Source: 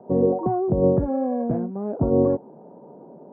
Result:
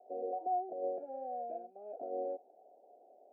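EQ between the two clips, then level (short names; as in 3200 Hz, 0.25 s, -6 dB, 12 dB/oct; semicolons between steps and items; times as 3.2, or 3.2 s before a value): vowel filter a; HPF 300 Hz 24 dB/oct; Butterworth band-stop 1100 Hz, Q 1.4; -4.0 dB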